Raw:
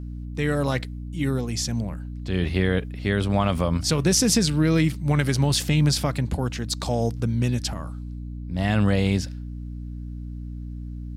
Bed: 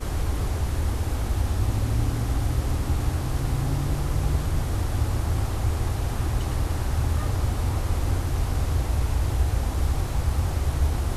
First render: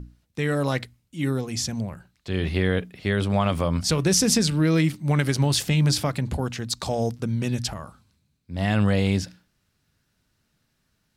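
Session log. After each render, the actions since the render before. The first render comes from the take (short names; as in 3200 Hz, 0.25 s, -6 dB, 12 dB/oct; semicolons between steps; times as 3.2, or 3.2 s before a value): notches 60/120/180/240/300 Hz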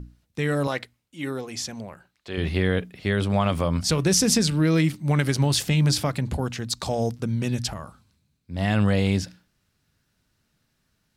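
0.67–2.38 tone controls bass -12 dB, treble -4 dB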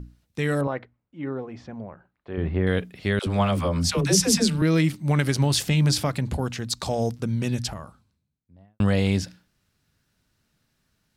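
0.61–2.67 LPF 1300 Hz; 3.19–4.62 dispersion lows, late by 74 ms, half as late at 460 Hz; 7.49–8.8 studio fade out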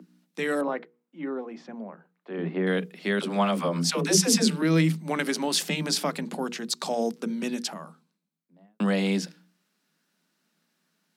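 Chebyshev high-pass 160 Hz, order 10; notches 60/120/180/240/300/360/420/480 Hz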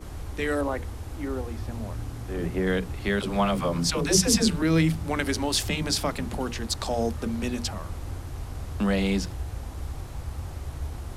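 add bed -10.5 dB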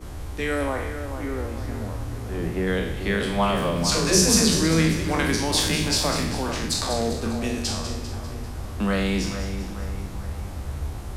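spectral trails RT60 0.73 s; on a send: split-band echo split 2100 Hz, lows 0.44 s, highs 0.198 s, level -9 dB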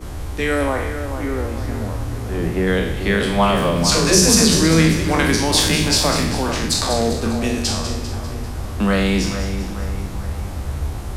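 gain +6 dB; limiter -2 dBFS, peak gain reduction 3 dB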